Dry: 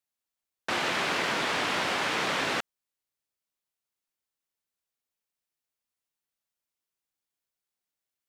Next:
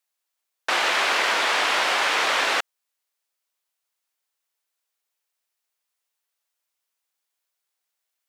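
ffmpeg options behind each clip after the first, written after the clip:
-af "highpass=550,volume=2.37"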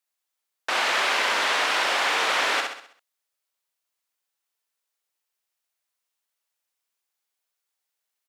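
-af "aecho=1:1:65|130|195|260|325|390:0.596|0.274|0.126|0.058|0.0267|0.0123,volume=0.708"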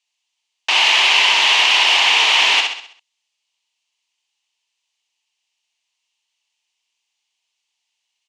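-af "highpass=320,equalizer=f=530:t=q:w=4:g=-10,equalizer=f=920:t=q:w=4:g=7,equalizer=f=1400:t=q:w=4:g=-8,equalizer=f=2900:t=q:w=4:g=7,equalizer=f=5300:t=q:w=4:g=-3,lowpass=f=6100:w=0.5412,lowpass=f=6100:w=1.3066,aexciter=amount=2.4:drive=6.6:freq=2200,volume=1.41"

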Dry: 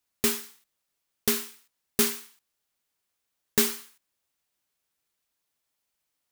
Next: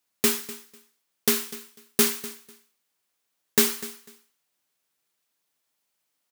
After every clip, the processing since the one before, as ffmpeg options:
-af "highpass=130,aecho=1:1:248|496:0.141|0.0268,volume=1.41"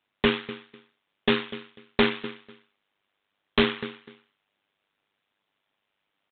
-af "tremolo=f=100:d=0.71,aresample=8000,aeval=exprs='0.1*(abs(mod(val(0)/0.1+3,4)-2)-1)':c=same,aresample=44100,volume=2.82"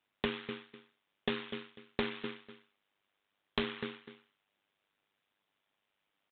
-af "acompressor=threshold=0.0447:ratio=6,volume=0.631"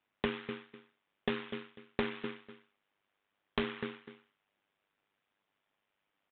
-af "lowpass=2900,volume=1.12"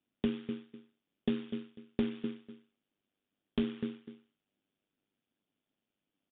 -af "equalizer=f=250:t=o:w=1:g=8,equalizer=f=500:t=o:w=1:g=-3,equalizer=f=1000:t=o:w=1:g=-11,equalizer=f=2000:t=o:w=1:g=-10,aresample=8000,aresample=44100"

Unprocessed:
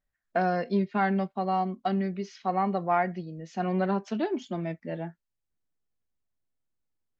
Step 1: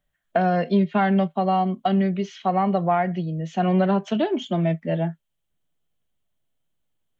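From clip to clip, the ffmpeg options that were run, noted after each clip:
-filter_complex "[0:a]equalizer=f=160:t=o:w=0.33:g=7,equalizer=f=630:t=o:w=0.33:g=6,equalizer=f=3150:t=o:w=0.33:g=10,equalizer=f=5000:t=o:w=0.33:g=-9,acrossover=split=190[s0][s1];[s1]acompressor=threshold=0.0562:ratio=3[s2];[s0][s2]amix=inputs=2:normalize=0,volume=2.11"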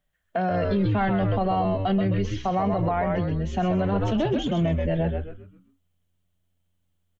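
-filter_complex "[0:a]asplit=2[s0][s1];[s1]asplit=5[s2][s3][s4][s5][s6];[s2]adelay=130,afreqshift=-88,volume=0.562[s7];[s3]adelay=260,afreqshift=-176,volume=0.209[s8];[s4]adelay=390,afreqshift=-264,volume=0.0767[s9];[s5]adelay=520,afreqshift=-352,volume=0.0285[s10];[s6]adelay=650,afreqshift=-440,volume=0.0106[s11];[s7][s8][s9][s10][s11]amix=inputs=5:normalize=0[s12];[s0][s12]amix=inputs=2:normalize=0,alimiter=limit=0.158:level=0:latency=1:release=24"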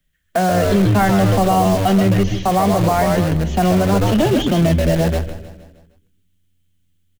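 -filter_complex "[0:a]acrossover=split=190|420|1400[s0][s1][s2][s3];[s2]acrusher=bits=5:mix=0:aa=0.000001[s4];[s0][s1][s4][s3]amix=inputs=4:normalize=0,aecho=1:1:155|310|465|620|775:0.188|0.0961|0.049|0.025|0.0127,volume=2.66"

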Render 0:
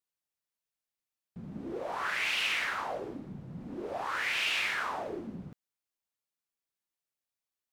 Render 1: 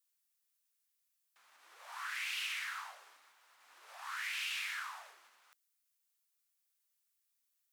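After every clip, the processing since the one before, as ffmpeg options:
-af "acompressor=threshold=0.01:ratio=6,highpass=f=1100:w=0.5412,highpass=f=1100:w=1.3066,highshelf=f=5700:g=11,volume=1.12"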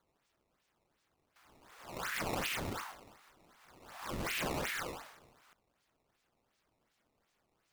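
-af "acrusher=samples=16:mix=1:aa=0.000001:lfo=1:lforange=25.6:lforate=2.7,volume=1.33"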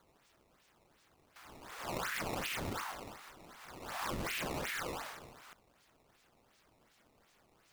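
-af "acompressor=threshold=0.00562:ratio=10,volume=2.99"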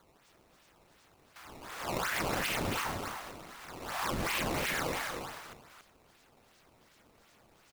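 -af "aecho=1:1:279:0.562,volume=1.68"

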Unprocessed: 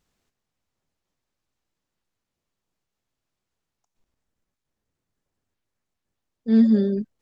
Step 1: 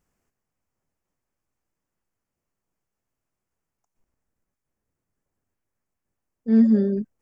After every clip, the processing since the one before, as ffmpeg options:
-af "equalizer=f=3800:t=o:w=0.66:g=-15"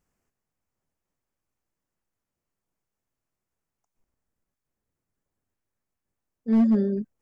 -af "volume=4.22,asoftclip=hard,volume=0.237,volume=0.75"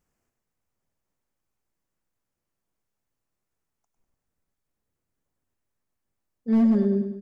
-af "aecho=1:1:101|202|303|404|505:0.376|0.177|0.083|0.039|0.0183"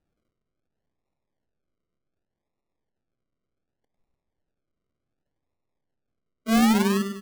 -af "acrusher=samples=40:mix=1:aa=0.000001:lfo=1:lforange=24:lforate=0.67"

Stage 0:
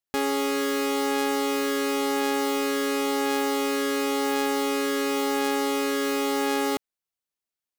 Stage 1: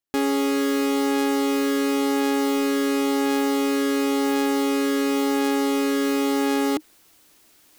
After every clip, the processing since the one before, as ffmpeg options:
-af "equalizer=f=310:t=o:w=0.45:g=10,areverse,acompressor=mode=upward:threshold=0.0355:ratio=2.5,areverse"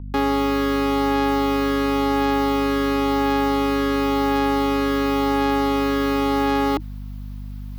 -filter_complex "[0:a]aeval=exprs='val(0)+0.0282*(sin(2*PI*50*n/s)+sin(2*PI*2*50*n/s)/2+sin(2*PI*3*50*n/s)/3+sin(2*PI*4*50*n/s)/4+sin(2*PI*5*50*n/s)/5)':c=same,equalizer=f=1000:t=o:w=1:g=8,equalizer=f=4000:t=o:w=1:g=3,equalizer=f=8000:t=o:w=1:g=-11,acrossover=split=420|7100[s0][s1][s2];[s2]alimiter=level_in=2:limit=0.0631:level=0:latency=1,volume=0.501[s3];[s0][s1][s3]amix=inputs=3:normalize=0"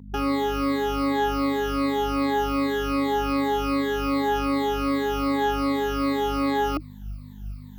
-af "afftfilt=real='re*pow(10,20/40*sin(2*PI*(1*log(max(b,1)*sr/1024/100)/log(2)-(-2.6)*(pts-256)/sr)))':imag='im*pow(10,20/40*sin(2*PI*(1*log(max(b,1)*sr/1024/100)/log(2)-(-2.6)*(pts-256)/sr)))':win_size=1024:overlap=0.75,volume=0.398"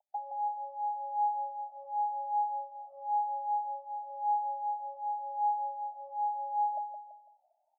-filter_complex "[0:a]asuperpass=centerf=710:order=12:qfactor=2.7,asplit=2[s0][s1];[s1]aecho=0:1:167|334|501|668:0.447|0.165|0.0612|0.0226[s2];[s0][s2]amix=inputs=2:normalize=0,volume=0.841"

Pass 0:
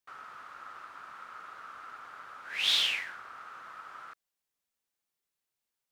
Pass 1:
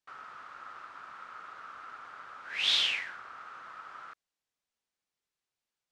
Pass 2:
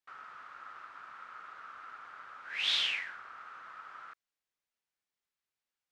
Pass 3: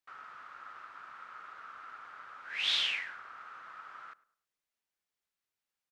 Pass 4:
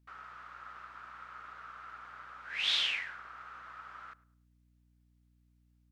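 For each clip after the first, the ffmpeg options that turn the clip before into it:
-af "lowpass=7100"
-af "equalizer=f=1800:w=0.78:g=4.5,volume=0.531"
-filter_complex "[0:a]asplit=2[s0][s1];[s1]adelay=104,lowpass=f=1600:p=1,volume=0.112,asplit=2[s2][s3];[s3]adelay=104,lowpass=f=1600:p=1,volume=0.37,asplit=2[s4][s5];[s5]adelay=104,lowpass=f=1600:p=1,volume=0.37[s6];[s0][s2][s4][s6]amix=inputs=4:normalize=0"
-af "aeval=exprs='val(0)+0.000447*(sin(2*PI*60*n/s)+sin(2*PI*2*60*n/s)/2+sin(2*PI*3*60*n/s)/3+sin(2*PI*4*60*n/s)/4+sin(2*PI*5*60*n/s)/5)':c=same"

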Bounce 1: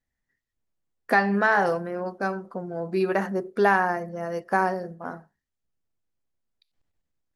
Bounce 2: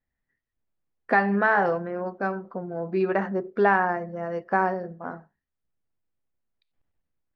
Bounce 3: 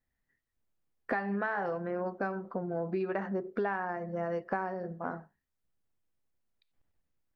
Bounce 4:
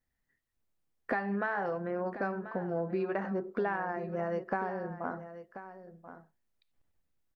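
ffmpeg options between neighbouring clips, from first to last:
-af "lowpass=2600"
-af "acompressor=threshold=0.0316:ratio=6"
-af "aecho=1:1:1035:0.224"

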